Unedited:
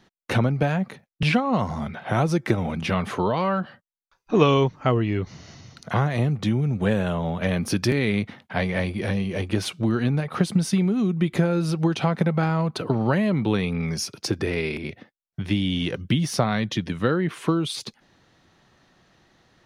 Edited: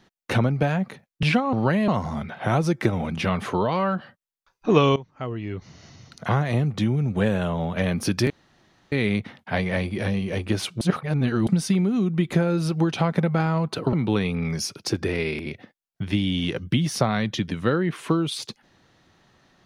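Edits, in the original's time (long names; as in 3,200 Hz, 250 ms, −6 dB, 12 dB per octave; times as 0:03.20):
0:04.61–0:05.96: fade in, from −18.5 dB
0:07.95: splice in room tone 0.62 s
0:09.84–0:10.50: reverse
0:12.96–0:13.31: move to 0:01.53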